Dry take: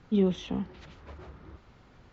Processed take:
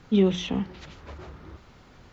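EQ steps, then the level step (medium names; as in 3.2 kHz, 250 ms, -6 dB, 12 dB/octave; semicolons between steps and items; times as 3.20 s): hum notches 60/120/180 Hz; dynamic bell 2.4 kHz, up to +4 dB, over -52 dBFS, Q 1.3; treble shelf 4.7 kHz +7.5 dB; +4.5 dB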